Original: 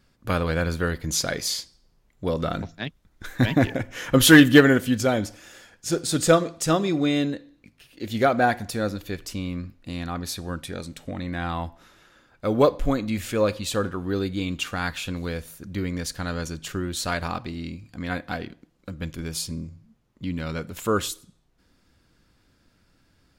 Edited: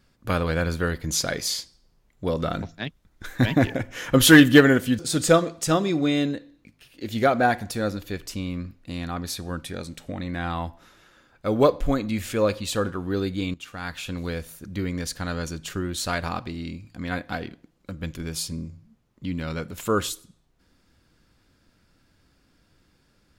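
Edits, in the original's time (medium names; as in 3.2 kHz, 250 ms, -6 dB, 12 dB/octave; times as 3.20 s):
4.99–5.98 s: delete
14.53–15.22 s: fade in, from -16 dB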